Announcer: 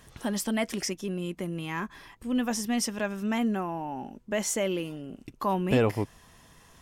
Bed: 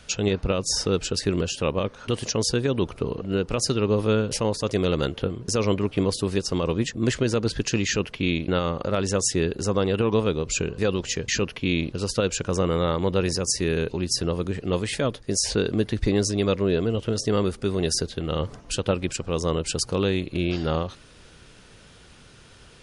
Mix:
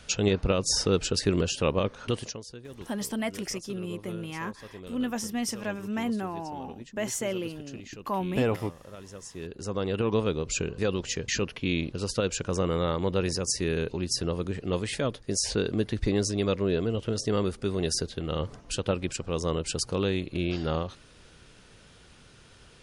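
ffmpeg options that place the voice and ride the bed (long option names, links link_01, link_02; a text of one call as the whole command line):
ffmpeg -i stem1.wav -i stem2.wav -filter_complex "[0:a]adelay=2650,volume=-2.5dB[link_01];[1:a]volume=15.5dB,afade=type=out:start_time=2.03:duration=0.38:silence=0.105925,afade=type=in:start_time=9.31:duration=0.78:silence=0.149624[link_02];[link_01][link_02]amix=inputs=2:normalize=0" out.wav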